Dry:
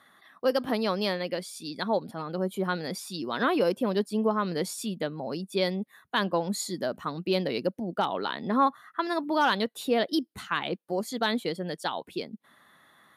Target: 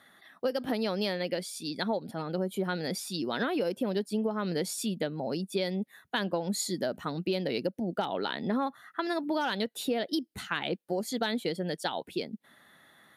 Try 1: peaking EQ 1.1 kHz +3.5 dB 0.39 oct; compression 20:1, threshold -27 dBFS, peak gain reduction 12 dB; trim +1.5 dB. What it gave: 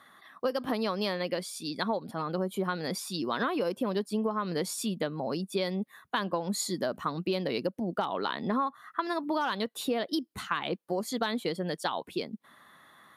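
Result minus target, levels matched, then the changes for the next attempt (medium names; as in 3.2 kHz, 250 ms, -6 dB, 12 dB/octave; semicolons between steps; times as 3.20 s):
1 kHz band +3.0 dB
change: peaking EQ 1.1 kHz -8.5 dB 0.39 oct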